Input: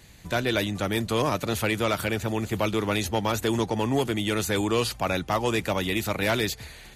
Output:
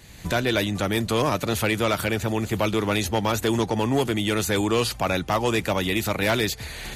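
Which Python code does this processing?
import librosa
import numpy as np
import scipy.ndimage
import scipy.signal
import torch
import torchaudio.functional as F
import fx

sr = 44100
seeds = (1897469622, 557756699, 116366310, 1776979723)

y = fx.recorder_agc(x, sr, target_db=-20.5, rise_db_per_s=26.0, max_gain_db=30)
y = np.clip(y, -10.0 ** (-17.0 / 20.0), 10.0 ** (-17.0 / 20.0))
y = y * 10.0 ** (2.5 / 20.0)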